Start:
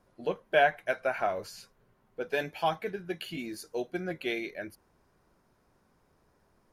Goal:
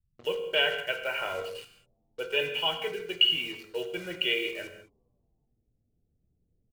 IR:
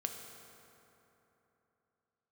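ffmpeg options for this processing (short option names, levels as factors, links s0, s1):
-filter_complex "[0:a]aecho=1:1:2.1:0.7,asplit=2[s0][s1];[s1]alimiter=limit=0.0794:level=0:latency=1,volume=0.794[s2];[s0][s2]amix=inputs=2:normalize=0,volume=5.01,asoftclip=hard,volume=0.2,lowpass=f=2900:t=q:w=16,acrossover=split=160[s3][s4];[s3]asplit=9[s5][s6][s7][s8][s9][s10][s11][s12][s13];[s6]adelay=93,afreqshift=97,volume=0.355[s14];[s7]adelay=186,afreqshift=194,volume=0.224[s15];[s8]adelay=279,afreqshift=291,volume=0.141[s16];[s9]adelay=372,afreqshift=388,volume=0.0891[s17];[s10]adelay=465,afreqshift=485,volume=0.0556[s18];[s11]adelay=558,afreqshift=582,volume=0.0351[s19];[s12]adelay=651,afreqshift=679,volume=0.0221[s20];[s13]adelay=744,afreqshift=776,volume=0.014[s21];[s5][s14][s15][s16][s17][s18][s19][s20][s21]amix=inputs=9:normalize=0[s22];[s4]acrusher=bits=5:mix=0:aa=0.5[s23];[s22][s23]amix=inputs=2:normalize=0[s24];[1:a]atrim=start_sample=2205,afade=t=out:st=0.26:d=0.01,atrim=end_sample=11907[s25];[s24][s25]afir=irnorm=-1:irlink=0,volume=0.376"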